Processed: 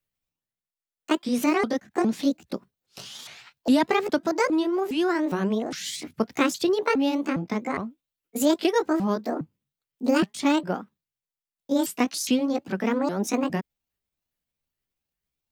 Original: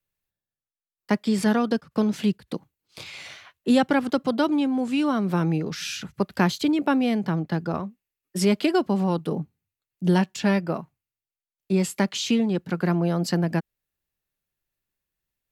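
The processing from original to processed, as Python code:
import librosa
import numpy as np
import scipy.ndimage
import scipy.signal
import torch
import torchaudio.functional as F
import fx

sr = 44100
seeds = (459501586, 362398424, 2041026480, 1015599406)

y = fx.pitch_ramps(x, sr, semitones=9.5, every_ms=409)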